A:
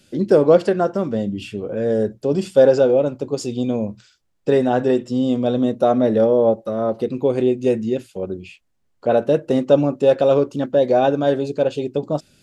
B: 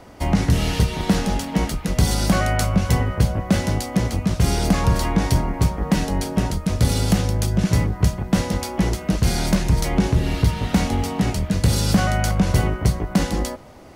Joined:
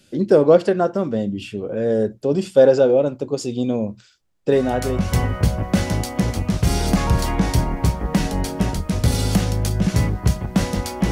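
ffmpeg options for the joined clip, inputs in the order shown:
ffmpeg -i cue0.wav -i cue1.wav -filter_complex "[0:a]apad=whole_dur=11.11,atrim=end=11.11,atrim=end=5.21,asetpts=PTS-STARTPTS[link_01];[1:a]atrim=start=2.26:end=8.88,asetpts=PTS-STARTPTS[link_02];[link_01][link_02]acrossfade=duration=0.72:curve1=tri:curve2=tri" out.wav

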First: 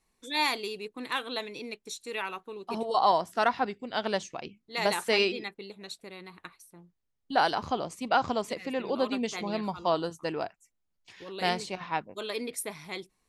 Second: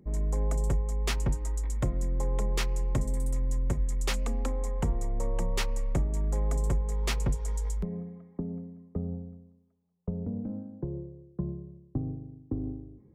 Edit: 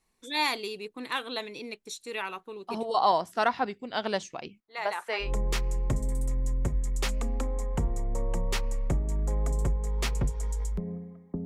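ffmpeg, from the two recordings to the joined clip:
ffmpeg -i cue0.wav -i cue1.wav -filter_complex "[0:a]asettb=1/sr,asplit=3[link_01][link_02][link_03];[link_01]atrim=end=4.604[link_04];[link_02]atrim=start=4.6:end=5.33,asetpts=PTS-STARTPTS,afade=type=in:duration=0.004:curve=qsin,afade=type=out:start_time=0.726:duration=0.004:curve=qsin,acrossover=split=530 2200:gain=0.1 1 0.224[link_05][link_06][link_07];[link_05][link_06][link_07]amix=inputs=3:normalize=0[link_08];[link_03]atrim=start=5.326[link_09];[link_04][link_08]acrossfade=duration=0.004:curve1=hsin:curve2=qsin[link_10];[link_10][link_09]acrossfade=duration=0.004:curve1=qsin:curve2=hsin,apad=whole_dur=11.45,atrim=end=11.45,atrim=end=5.33,asetpts=PTS-STARTPTS[link_11];[1:a]atrim=start=2.24:end=8.5,asetpts=PTS-STARTPTS[link_12];[link_11][link_12]acrossfade=duration=0.14:curve1=tri:curve2=tri" out.wav

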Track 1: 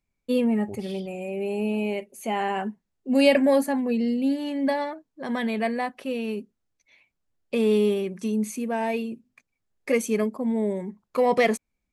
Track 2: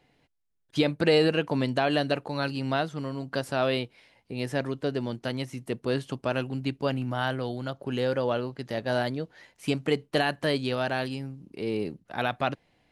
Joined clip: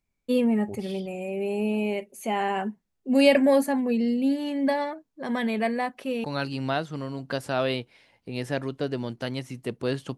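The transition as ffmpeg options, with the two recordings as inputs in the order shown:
ffmpeg -i cue0.wav -i cue1.wav -filter_complex "[0:a]apad=whole_dur=10.17,atrim=end=10.17,atrim=end=6.242[link_01];[1:a]atrim=start=2.268:end=6.2[link_02];[link_01][link_02]acrossfade=duration=0.004:curve1=hsin:curve2=hsin" out.wav

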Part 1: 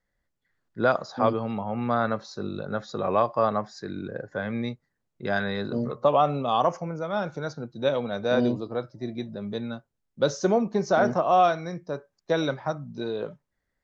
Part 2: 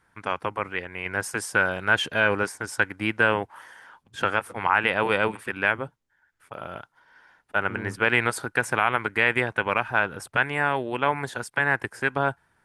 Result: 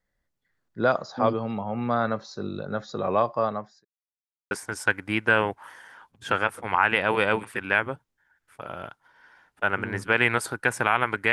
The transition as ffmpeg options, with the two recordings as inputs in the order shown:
ffmpeg -i cue0.wav -i cue1.wav -filter_complex "[0:a]apad=whole_dur=11.32,atrim=end=11.32,asplit=2[link_01][link_02];[link_01]atrim=end=3.85,asetpts=PTS-STARTPTS,afade=type=out:start_time=3.13:duration=0.72:curve=qsin[link_03];[link_02]atrim=start=3.85:end=4.51,asetpts=PTS-STARTPTS,volume=0[link_04];[1:a]atrim=start=2.43:end=9.24,asetpts=PTS-STARTPTS,afade=type=in:duration=0.004:curve=hsin[link_05];[link_03][link_04][link_05]concat=n=3:v=0:a=1" out.wav

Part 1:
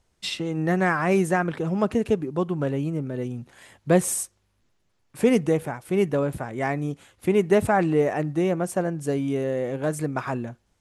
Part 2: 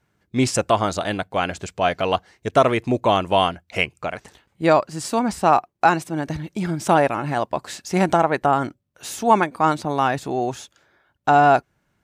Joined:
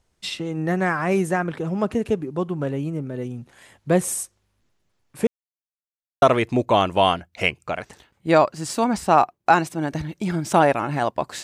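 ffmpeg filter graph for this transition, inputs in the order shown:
ffmpeg -i cue0.wav -i cue1.wav -filter_complex "[0:a]apad=whole_dur=11.43,atrim=end=11.43,asplit=2[link_01][link_02];[link_01]atrim=end=5.27,asetpts=PTS-STARTPTS,afade=type=out:start_time=5.266:duration=0.004:curve=hsin[link_03];[link_02]atrim=start=5.27:end=6.22,asetpts=PTS-STARTPTS,volume=0[link_04];[1:a]atrim=start=2.57:end=7.78,asetpts=PTS-STARTPTS,afade=type=in:duration=0.004:curve=hsin[link_05];[link_03][link_04][link_05]concat=n=3:v=0:a=1" out.wav

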